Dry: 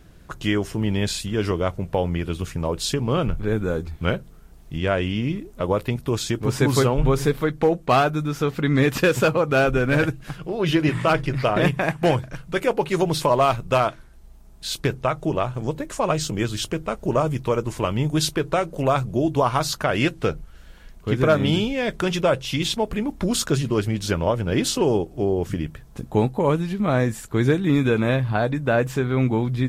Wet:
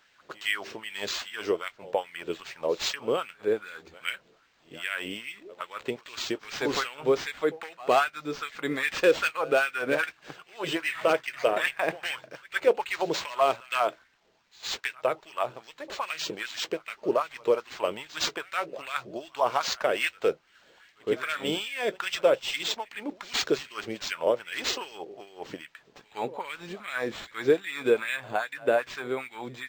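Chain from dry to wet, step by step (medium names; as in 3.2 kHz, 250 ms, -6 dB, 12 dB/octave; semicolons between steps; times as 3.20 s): pre-echo 113 ms -21.5 dB; LFO high-pass sine 2.5 Hz 430–2100 Hz; peaking EQ 860 Hz -9 dB 2.6 oct; decimation joined by straight lines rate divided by 4×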